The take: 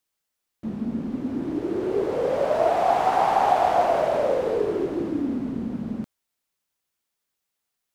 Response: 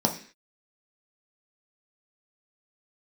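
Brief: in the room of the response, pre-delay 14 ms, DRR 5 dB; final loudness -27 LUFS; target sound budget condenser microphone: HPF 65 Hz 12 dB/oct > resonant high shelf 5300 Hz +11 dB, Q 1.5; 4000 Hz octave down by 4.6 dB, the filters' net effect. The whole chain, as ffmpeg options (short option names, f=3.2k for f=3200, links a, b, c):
-filter_complex "[0:a]equalizer=f=4k:t=o:g=-5.5,asplit=2[a][b];[1:a]atrim=start_sample=2205,adelay=14[c];[b][c]afir=irnorm=-1:irlink=0,volume=-16.5dB[d];[a][d]amix=inputs=2:normalize=0,highpass=65,highshelf=f=5.3k:t=q:w=1.5:g=11,volume=-6dB"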